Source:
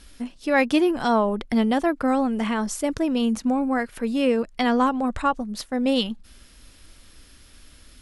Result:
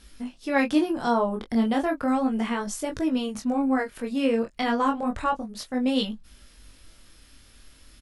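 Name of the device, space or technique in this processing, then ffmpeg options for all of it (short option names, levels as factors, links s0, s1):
double-tracked vocal: -filter_complex "[0:a]asplit=2[s0][s1];[s1]adelay=19,volume=0.266[s2];[s0][s2]amix=inputs=2:normalize=0,flanger=delay=19.5:depth=6.9:speed=0.33,asettb=1/sr,asplit=3[s3][s4][s5];[s3]atrim=end=0.734[s6];[s4]atrim=start=0.73:end=1.65,asetpts=PTS-STARTPTS,afade=t=in:d=0.004:c=qsin,afade=t=out:st=0.916:d=0.004:c=qsin,equalizer=f=2400:t=o:w=0.89:g=-6[s7];[s5]atrim=start=1.646[s8];[s6][s7]acrossfade=d=0.004:c1=hsin:c2=qsin[s9];[s9][s8]acrossfade=d=0.004:c1=qsin:c2=hsin"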